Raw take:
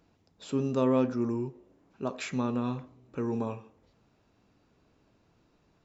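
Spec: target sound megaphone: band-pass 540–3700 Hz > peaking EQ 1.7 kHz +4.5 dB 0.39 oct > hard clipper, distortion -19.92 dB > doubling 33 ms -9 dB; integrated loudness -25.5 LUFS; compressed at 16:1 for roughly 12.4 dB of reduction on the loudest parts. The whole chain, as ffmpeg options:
-filter_complex "[0:a]acompressor=threshold=0.0224:ratio=16,highpass=540,lowpass=3700,equalizer=f=1700:t=o:w=0.39:g=4.5,asoftclip=type=hard:threshold=0.0188,asplit=2[s0][s1];[s1]adelay=33,volume=0.355[s2];[s0][s2]amix=inputs=2:normalize=0,volume=11.2"

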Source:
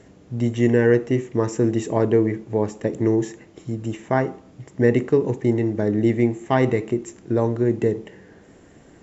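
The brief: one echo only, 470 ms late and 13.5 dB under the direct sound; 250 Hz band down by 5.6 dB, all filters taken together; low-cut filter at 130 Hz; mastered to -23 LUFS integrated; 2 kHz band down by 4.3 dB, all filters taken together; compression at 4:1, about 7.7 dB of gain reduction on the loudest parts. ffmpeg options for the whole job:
-af "highpass=130,equalizer=f=250:t=o:g=-7.5,equalizer=f=2000:t=o:g=-5,acompressor=threshold=0.0631:ratio=4,aecho=1:1:470:0.211,volume=2.24"

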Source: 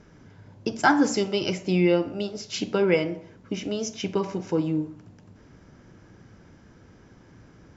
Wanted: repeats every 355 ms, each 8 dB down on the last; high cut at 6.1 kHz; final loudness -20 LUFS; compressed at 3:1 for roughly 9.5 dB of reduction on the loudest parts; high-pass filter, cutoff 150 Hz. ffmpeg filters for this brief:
-af "highpass=150,lowpass=6100,acompressor=threshold=0.0398:ratio=3,aecho=1:1:355|710|1065|1420|1775:0.398|0.159|0.0637|0.0255|0.0102,volume=3.98"

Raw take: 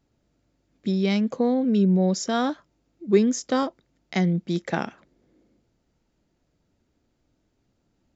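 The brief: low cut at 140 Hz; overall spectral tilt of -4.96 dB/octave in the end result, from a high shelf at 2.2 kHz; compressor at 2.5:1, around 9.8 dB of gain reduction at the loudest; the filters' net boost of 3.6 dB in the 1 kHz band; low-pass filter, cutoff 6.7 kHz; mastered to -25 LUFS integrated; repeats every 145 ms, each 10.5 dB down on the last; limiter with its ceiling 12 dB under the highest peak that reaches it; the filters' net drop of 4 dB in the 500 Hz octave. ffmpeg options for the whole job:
-af "highpass=140,lowpass=6700,equalizer=f=500:t=o:g=-7,equalizer=f=1000:t=o:g=6.5,highshelf=f=2200:g=6.5,acompressor=threshold=0.0282:ratio=2.5,alimiter=limit=0.0668:level=0:latency=1,aecho=1:1:145|290|435:0.299|0.0896|0.0269,volume=2.66"

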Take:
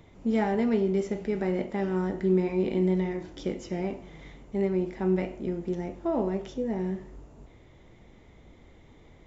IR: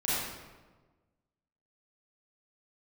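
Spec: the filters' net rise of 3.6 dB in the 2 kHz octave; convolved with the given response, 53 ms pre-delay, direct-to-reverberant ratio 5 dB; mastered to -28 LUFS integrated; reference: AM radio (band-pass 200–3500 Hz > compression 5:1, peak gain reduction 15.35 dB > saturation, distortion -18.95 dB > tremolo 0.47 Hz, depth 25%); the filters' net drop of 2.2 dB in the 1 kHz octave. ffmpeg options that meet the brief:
-filter_complex "[0:a]equalizer=f=1000:t=o:g=-4,equalizer=f=2000:t=o:g=5.5,asplit=2[s0][s1];[1:a]atrim=start_sample=2205,adelay=53[s2];[s1][s2]afir=irnorm=-1:irlink=0,volume=0.2[s3];[s0][s3]amix=inputs=2:normalize=0,highpass=200,lowpass=3500,acompressor=threshold=0.0158:ratio=5,asoftclip=threshold=0.0266,tremolo=f=0.47:d=0.25,volume=5.01"

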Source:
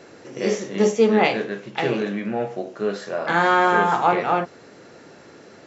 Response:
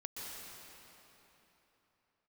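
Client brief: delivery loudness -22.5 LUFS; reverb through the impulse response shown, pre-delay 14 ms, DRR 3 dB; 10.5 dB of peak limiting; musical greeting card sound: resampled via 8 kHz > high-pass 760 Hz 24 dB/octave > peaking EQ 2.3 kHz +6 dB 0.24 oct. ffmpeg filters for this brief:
-filter_complex "[0:a]alimiter=limit=0.178:level=0:latency=1,asplit=2[s0][s1];[1:a]atrim=start_sample=2205,adelay=14[s2];[s1][s2]afir=irnorm=-1:irlink=0,volume=0.75[s3];[s0][s3]amix=inputs=2:normalize=0,aresample=8000,aresample=44100,highpass=f=760:w=0.5412,highpass=f=760:w=1.3066,equalizer=f=2300:t=o:w=0.24:g=6,volume=2.11"

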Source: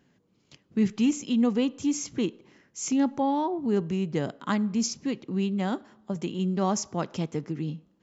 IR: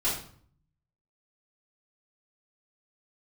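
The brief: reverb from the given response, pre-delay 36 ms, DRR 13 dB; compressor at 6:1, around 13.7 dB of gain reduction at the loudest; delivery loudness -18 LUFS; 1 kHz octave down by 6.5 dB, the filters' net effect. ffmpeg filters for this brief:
-filter_complex "[0:a]equalizer=f=1000:t=o:g=-8.5,acompressor=threshold=0.0178:ratio=6,asplit=2[s0][s1];[1:a]atrim=start_sample=2205,adelay=36[s2];[s1][s2]afir=irnorm=-1:irlink=0,volume=0.0794[s3];[s0][s3]amix=inputs=2:normalize=0,volume=10.6"

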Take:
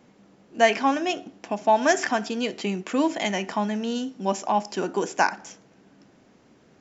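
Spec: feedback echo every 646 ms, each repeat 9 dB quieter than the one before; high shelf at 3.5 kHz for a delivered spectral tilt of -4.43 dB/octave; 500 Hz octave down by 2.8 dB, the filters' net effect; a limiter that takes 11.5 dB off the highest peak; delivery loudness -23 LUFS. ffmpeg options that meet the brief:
-af "equalizer=f=500:t=o:g=-4,highshelf=f=3500:g=-5,alimiter=limit=0.126:level=0:latency=1,aecho=1:1:646|1292|1938|2584:0.355|0.124|0.0435|0.0152,volume=2.24"

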